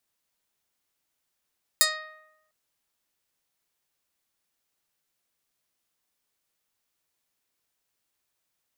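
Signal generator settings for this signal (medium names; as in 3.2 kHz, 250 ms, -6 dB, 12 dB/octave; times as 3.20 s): plucked string D#5, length 0.70 s, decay 0.94 s, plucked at 0.21, medium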